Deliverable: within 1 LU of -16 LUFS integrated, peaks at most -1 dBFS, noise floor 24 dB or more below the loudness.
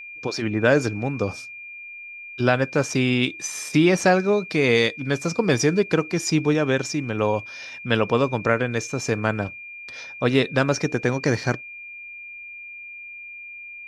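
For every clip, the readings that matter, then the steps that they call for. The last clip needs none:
steady tone 2.4 kHz; tone level -36 dBFS; loudness -22.0 LUFS; peak level -4.0 dBFS; loudness target -16.0 LUFS
-> band-stop 2.4 kHz, Q 30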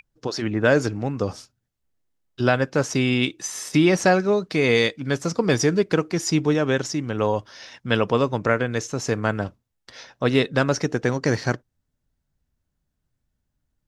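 steady tone not found; loudness -22.5 LUFS; peak level -4.0 dBFS; loudness target -16.0 LUFS
-> trim +6.5 dB; peak limiter -1 dBFS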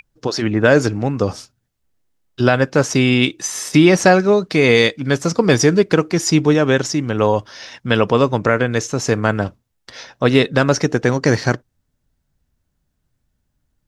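loudness -16.0 LUFS; peak level -1.0 dBFS; noise floor -71 dBFS

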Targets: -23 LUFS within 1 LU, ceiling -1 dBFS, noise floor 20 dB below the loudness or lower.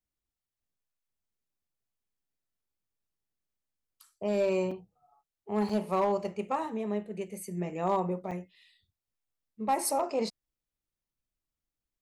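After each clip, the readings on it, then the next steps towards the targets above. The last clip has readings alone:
clipped samples 0.2%; clipping level -20.5 dBFS; dropouts 3; longest dropout 4.6 ms; loudness -32.0 LUFS; peak level -20.5 dBFS; loudness target -23.0 LUFS
-> clip repair -20.5 dBFS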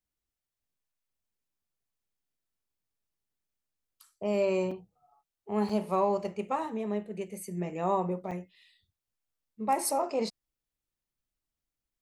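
clipped samples 0.0%; dropouts 3; longest dropout 4.6 ms
-> interpolate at 4.71/5.69/8.31 s, 4.6 ms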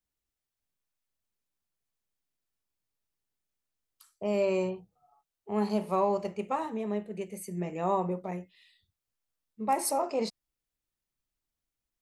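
dropouts 0; loudness -31.5 LUFS; peak level -15.5 dBFS; loudness target -23.0 LUFS
-> trim +8.5 dB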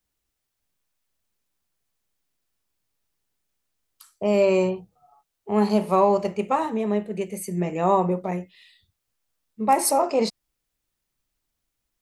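loudness -23.0 LUFS; peak level -7.0 dBFS; noise floor -80 dBFS

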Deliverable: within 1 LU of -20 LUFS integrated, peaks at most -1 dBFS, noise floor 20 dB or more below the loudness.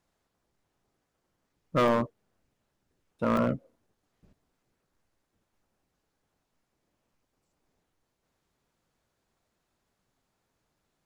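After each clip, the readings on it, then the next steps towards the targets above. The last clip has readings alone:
clipped samples 0.3%; clipping level -19.0 dBFS; dropouts 2; longest dropout 2.7 ms; loudness -28.5 LUFS; peak level -19.0 dBFS; loudness target -20.0 LUFS
-> clip repair -19 dBFS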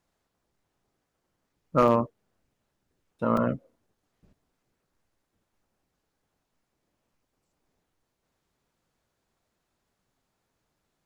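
clipped samples 0.0%; dropouts 2; longest dropout 2.7 ms
-> interpolate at 1.88/3.37 s, 2.7 ms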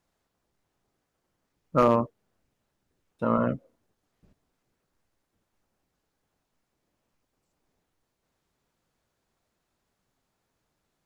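dropouts 0; loudness -26.0 LUFS; peak level -10.0 dBFS; loudness target -20.0 LUFS
-> trim +6 dB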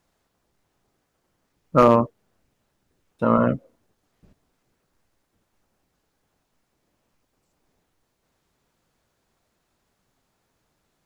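loudness -20.0 LUFS; peak level -4.0 dBFS; noise floor -74 dBFS

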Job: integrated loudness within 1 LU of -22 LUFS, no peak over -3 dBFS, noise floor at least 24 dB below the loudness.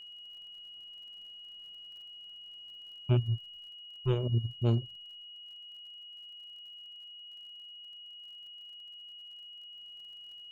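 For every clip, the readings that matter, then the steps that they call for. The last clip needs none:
tick rate 47 per s; steady tone 2.9 kHz; tone level -46 dBFS; loudness -38.5 LUFS; peak level -18.0 dBFS; loudness target -22.0 LUFS
-> de-click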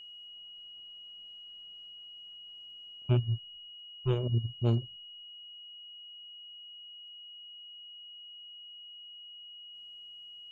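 tick rate 0.095 per s; steady tone 2.9 kHz; tone level -46 dBFS
-> band-stop 2.9 kHz, Q 30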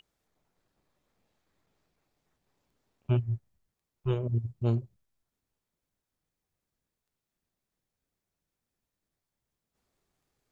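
steady tone not found; loudness -31.5 LUFS; peak level -18.0 dBFS; loudness target -22.0 LUFS
-> trim +9.5 dB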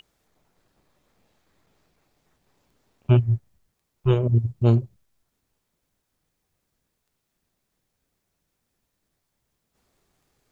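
loudness -22.0 LUFS; peak level -8.5 dBFS; noise floor -78 dBFS

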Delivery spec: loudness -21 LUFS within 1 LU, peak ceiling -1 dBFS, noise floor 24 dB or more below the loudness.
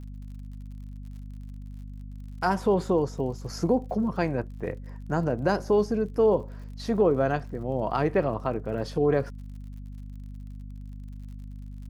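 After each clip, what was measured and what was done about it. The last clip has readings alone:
tick rate 56 per s; hum 50 Hz; highest harmonic 250 Hz; hum level -37 dBFS; loudness -27.0 LUFS; peak level -11.0 dBFS; loudness target -21.0 LUFS
-> de-click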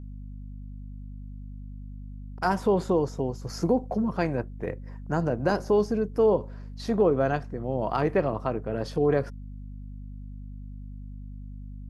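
tick rate 0 per s; hum 50 Hz; highest harmonic 250 Hz; hum level -37 dBFS
-> hum notches 50/100/150/200/250 Hz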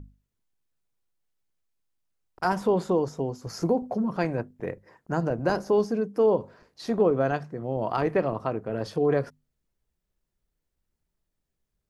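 hum not found; loudness -27.0 LUFS; peak level -10.5 dBFS; loudness target -21.0 LUFS
-> trim +6 dB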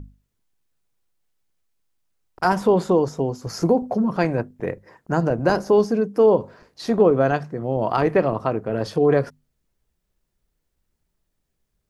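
loudness -21.0 LUFS; peak level -4.5 dBFS; noise floor -76 dBFS

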